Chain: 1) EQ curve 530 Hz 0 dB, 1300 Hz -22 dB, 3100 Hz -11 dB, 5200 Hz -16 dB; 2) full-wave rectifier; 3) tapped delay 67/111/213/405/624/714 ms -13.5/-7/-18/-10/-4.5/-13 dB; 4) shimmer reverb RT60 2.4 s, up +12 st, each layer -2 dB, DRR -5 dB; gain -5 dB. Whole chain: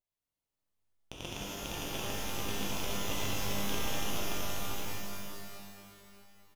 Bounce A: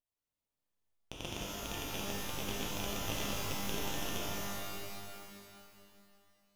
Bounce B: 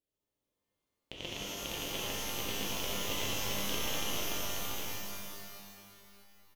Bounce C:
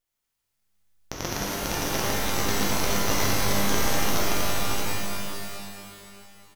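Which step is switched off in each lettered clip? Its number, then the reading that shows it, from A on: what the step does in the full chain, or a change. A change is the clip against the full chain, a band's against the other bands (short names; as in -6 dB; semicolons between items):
3, loudness change -2.0 LU; 2, distortion -6 dB; 1, 4 kHz band -2.5 dB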